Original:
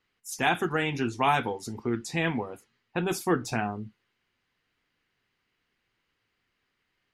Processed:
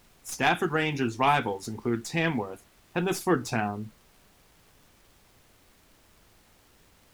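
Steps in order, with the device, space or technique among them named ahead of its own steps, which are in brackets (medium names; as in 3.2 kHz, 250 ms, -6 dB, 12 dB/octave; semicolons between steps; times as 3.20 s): record under a worn stylus (tracing distortion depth 0.024 ms; crackle; pink noise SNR 29 dB); trim +1 dB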